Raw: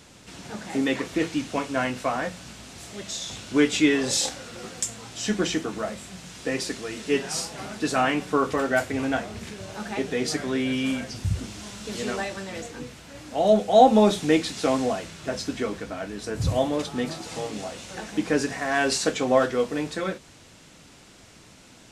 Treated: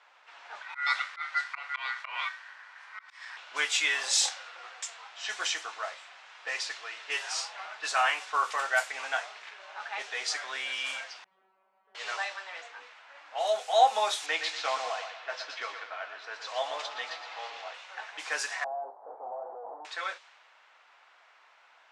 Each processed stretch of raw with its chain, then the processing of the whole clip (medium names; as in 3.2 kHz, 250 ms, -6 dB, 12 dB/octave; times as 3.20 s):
0.62–3.37 s: delay 77 ms -20.5 dB + slow attack 141 ms + ring modulator 1.7 kHz
11.24–11.95 s: median filter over 25 samples + tilt EQ -4 dB/octave + feedback comb 190 Hz, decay 0.35 s, mix 100%
14.26–17.74 s: band-pass 120–5000 Hz + feedback delay 120 ms, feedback 41%, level -8 dB
18.64–19.85 s: one-bit comparator + elliptic low-pass 780 Hz, stop band 70 dB + bass shelf 160 Hz -10.5 dB
whole clip: low-pass 11 kHz 12 dB/octave; level-controlled noise filter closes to 1.7 kHz, open at -19 dBFS; high-pass 820 Hz 24 dB/octave